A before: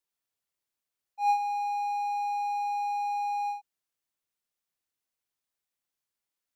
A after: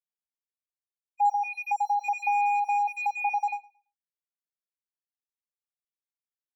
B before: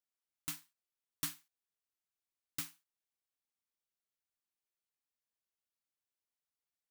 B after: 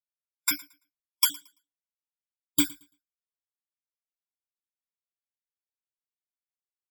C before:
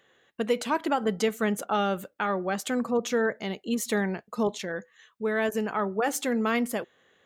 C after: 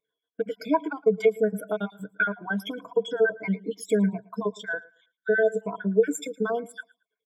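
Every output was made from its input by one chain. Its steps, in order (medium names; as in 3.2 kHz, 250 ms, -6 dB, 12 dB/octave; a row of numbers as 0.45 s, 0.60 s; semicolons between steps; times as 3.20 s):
random holes in the spectrogram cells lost 49%; compression 4:1, threshold -32 dBFS; rippled EQ curve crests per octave 1.7, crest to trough 16 dB; gate -58 dBFS, range -7 dB; bass shelf 110 Hz -6.5 dB; feedback delay 112 ms, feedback 35%, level -15.5 dB; spectral contrast expander 1.5:1; normalise loudness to -27 LUFS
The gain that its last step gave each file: +16.0 dB, +16.0 dB, +9.0 dB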